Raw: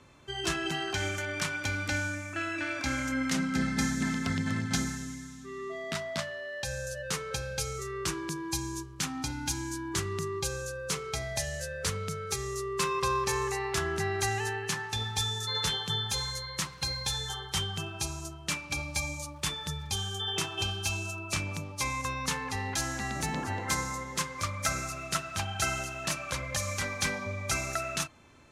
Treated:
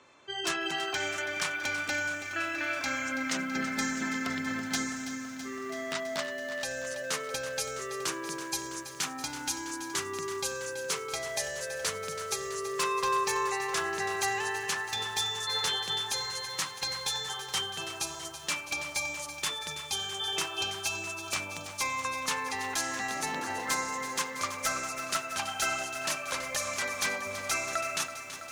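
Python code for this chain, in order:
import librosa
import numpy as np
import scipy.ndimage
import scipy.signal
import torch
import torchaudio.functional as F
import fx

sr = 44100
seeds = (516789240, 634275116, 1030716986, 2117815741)

y = fx.low_shelf(x, sr, hz=84.0, db=-11.0)
y = fx.spec_gate(y, sr, threshold_db=-30, keep='strong')
y = fx.bass_treble(y, sr, bass_db=-14, treble_db=-1)
y = 10.0 ** (-23.0 / 20.0) * (np.abs((y / 10.0 ** (-23.0 / 20.0) + 3.0) % 4.0 - 2.0) - 1.0)
y = fx.echo_crushed(y, sr, ms=329, feedback_pct=80, bits=9, wet_db=-11.5)
y = y * 10.0 ** (1.5 / 20.0)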